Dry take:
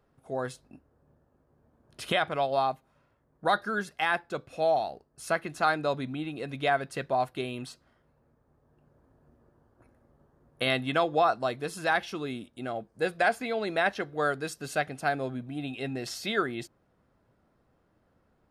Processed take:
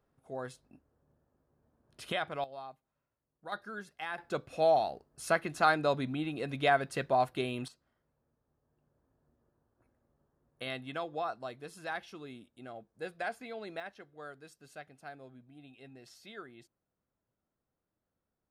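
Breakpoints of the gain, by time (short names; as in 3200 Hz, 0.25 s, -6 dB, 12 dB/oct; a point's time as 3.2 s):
-7.5 dB
from 2.44 s -18.5 dB
from 3.52 s -12 dB
from 4.18 s -0.5 dB
from 7.68 s -12 dB
from 13.8 s -19 dB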